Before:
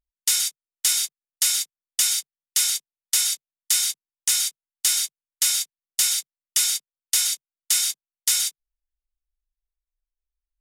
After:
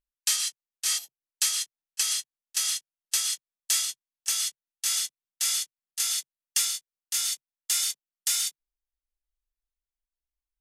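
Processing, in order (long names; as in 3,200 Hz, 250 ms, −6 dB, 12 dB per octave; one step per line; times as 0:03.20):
pitch glide at a constant tempo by −2.5 semitones ending unshifted
gain on a spectral selection 0:00.98–0:01.25, 950–11,000 Hz −14 dB
level −4 dB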